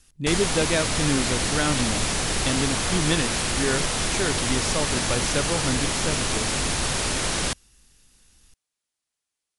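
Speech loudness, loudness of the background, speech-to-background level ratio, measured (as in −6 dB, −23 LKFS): −28.0 LKFS, −24.0 LKFS, −4.0 dB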